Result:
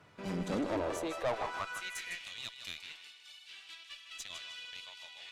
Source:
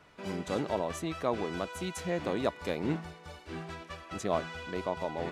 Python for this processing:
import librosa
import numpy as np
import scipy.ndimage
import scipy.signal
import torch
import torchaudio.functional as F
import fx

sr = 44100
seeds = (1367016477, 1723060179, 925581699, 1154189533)

y = fx.echo_feedback(x, sr, ms=155, feedback_pct=36, wet_db=-9.0)
y = fx.filter_sweep_highpass(y, sr, from_hz=100.0, to_hz=3100.0, start_s=0.12, end_s=2.3, q=2.3)
y = fx.tube_stage(y, sr, drive_db=28.0, bias=0.55)